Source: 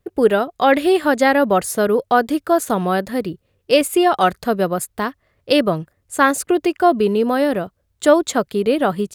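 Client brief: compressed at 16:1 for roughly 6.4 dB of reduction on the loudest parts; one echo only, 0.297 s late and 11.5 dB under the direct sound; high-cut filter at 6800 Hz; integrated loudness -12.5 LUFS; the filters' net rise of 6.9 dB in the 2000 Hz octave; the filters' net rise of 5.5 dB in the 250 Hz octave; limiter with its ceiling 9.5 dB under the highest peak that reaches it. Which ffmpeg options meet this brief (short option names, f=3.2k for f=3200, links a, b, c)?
-af "lowpass=6.8k,equalizer=f=250:t=o:g=7,equalizer=f=2k:t=o:g=9,acompressor=threshold=-11dB:ratio=16,alimiter=limit=-12.5dB:level=0:latency=1,aecho=1:1:297:0.266,volume=9.5dB"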